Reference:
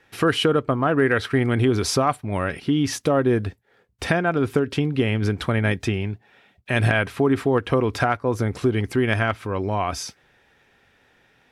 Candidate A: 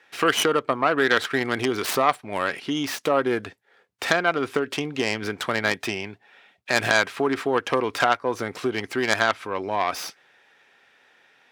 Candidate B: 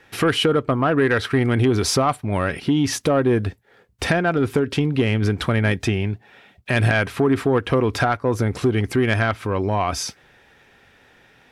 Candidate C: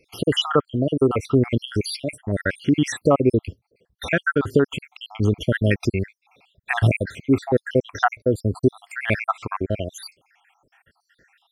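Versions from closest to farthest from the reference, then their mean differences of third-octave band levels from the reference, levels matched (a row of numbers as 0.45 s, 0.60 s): B, A, C; 1.5 dB, 6.5 dB, 11.0 dB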